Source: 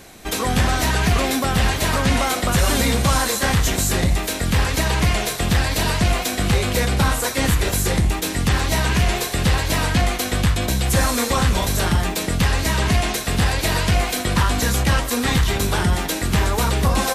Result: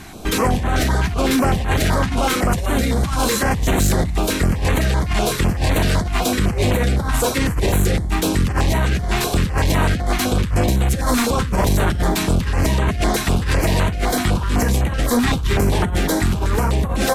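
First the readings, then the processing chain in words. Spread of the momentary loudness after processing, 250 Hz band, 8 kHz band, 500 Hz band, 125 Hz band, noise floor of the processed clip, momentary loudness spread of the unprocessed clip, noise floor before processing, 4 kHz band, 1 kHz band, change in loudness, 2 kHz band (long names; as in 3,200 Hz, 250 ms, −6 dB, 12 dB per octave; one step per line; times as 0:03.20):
2 LU, +3.0 dB, −2.5 dB, +2.5 dB, +1.0 dB, −23 dBFS, 2 LU, −27 dBFS, −3.0 dB, +0.5 dB, +0.5 dB, −1.5 dB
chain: high-shelf EQ 2,400 Hz −8.5 dB
compressor whose output falls as the input rises −21 dBFS, ratio −0.5
sine wavefolder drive 7 dB, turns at −8 dBFS
notch on a step sequencer 7.9 Hz 510–5,100 Hz
level −3.5 dB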